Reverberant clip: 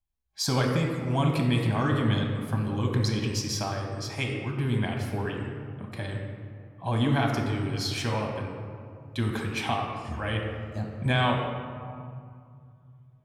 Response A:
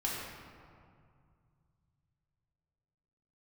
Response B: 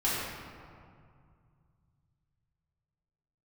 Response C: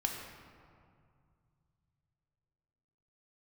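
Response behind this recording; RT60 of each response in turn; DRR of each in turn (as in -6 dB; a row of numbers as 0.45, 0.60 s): C; 2.2, 2.2, 2.3 s; -6.0, -10.0, 0.5 dB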